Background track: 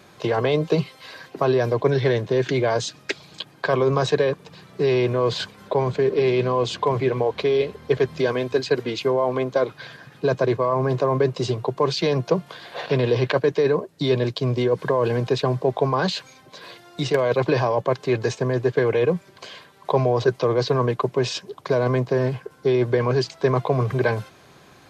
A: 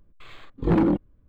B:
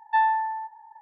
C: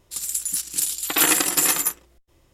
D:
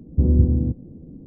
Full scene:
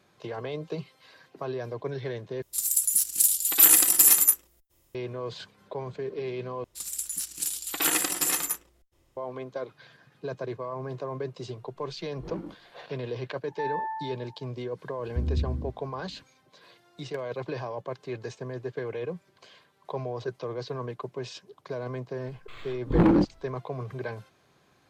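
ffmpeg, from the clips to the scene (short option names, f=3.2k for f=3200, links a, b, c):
-filter_complex "[3:a]asplit=2[a][b];[1:a]asplit=2[c][d];[0:a]volume=-14dB[e];[a]aemphasis=mode=production:type=50fm[f];[c]flanger=delay=17:depth=4.8:speed=2.3[g];[2:a]alimiter=limit=-22dB:level=0:latency=1:release=71[h];[4:a]equalizer=f=64:t=o:w=0.77:g=7[i];[e]asplit=3[j][k][l];[j]atrim=end=2.424[m];[f]atrim=end=2.53,asetpts=PTS-STARTPTS,volume=-9dB[n];[k]atrim=start=4.946:end=6.644[o];[b]atrim=end=2.53,asetpts=PTS-STARTPTS,volume=-7dB[p];[l]atrim=start=9.166[q];[g]atrim=end=1.28,asetpts=PTS-STARTPTS,volume=-17.5dB,afade=t=in:d=0.004:c=hsin,afade=t=out:st=1.276:d=0.004:c=hsin,adelay=11560[r];[h]atrim=end=1.01,asetpts=PTS-STARTPTS,volume=-5dB,afade=t=in:d=0.004:c=hsin,afade=t=out:st=1.006:d=0.004:c=hsin,adelay=13460[s];[i]atrim=end=1.26,asetpts=PTS-STARTPTS,volume=-16dB,afade=t=in:d=0.004:c=hsin,afade=t=out:st=1.256:d=0.004:c=hsin,adelay=14980[t];[d]atrim=end=1.28,asetpts=PTS-STARTPTS,afade=t=in:d=0.004:c=hsin,afade=t=out:st=1.276:d=0.004:c=hsin,adelay=982548S[u];[m][n]acrossfade=d=0.004:c1=hsin:c2=hsin[v];[v][o]acrossfade=d=0.004:c1=hsin:c2=hsin[w];[w][p]acrossfade=d=0.004:c1=hsin:c2=hsin[x];[x][q]acrossfade=d=0.004:c1=hsin:c2=hsin[y];[y][r][s][t][u]amix=inputs=5:normalize=0"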